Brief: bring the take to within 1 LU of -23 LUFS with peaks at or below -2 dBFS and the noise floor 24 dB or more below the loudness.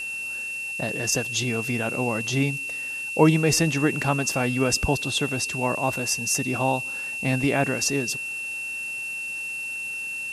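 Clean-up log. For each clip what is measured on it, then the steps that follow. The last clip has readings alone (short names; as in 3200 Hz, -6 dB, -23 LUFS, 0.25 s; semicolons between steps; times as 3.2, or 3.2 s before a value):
steady tone 2700 Hz; tone level -29 dBFS; noise floor -32 dBFS; noise floor target -49 dBFS; loudness -24.5 LUFS; peak -4.0 dBFS; loudness target -23.0 LUFS
-> notch 2700 Hz, Q 30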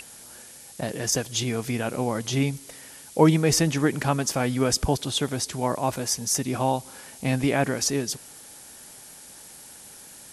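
steady tone none; noise floor -46 dBFS; noise floor target -49 dBFS
-> noise print and reduce 6 dB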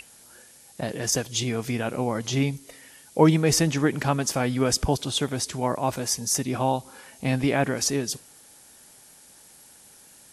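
noise floor -52 dBFS; loudness -25.0 LUFS; peak -4.5 dBFS; loudness target -23.0 LUFS
-> gain +2 dB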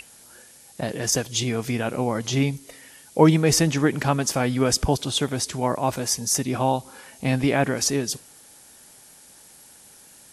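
loudness -23.0 LUFS; peak -2.5 dBFS; noise floor -50 dBFS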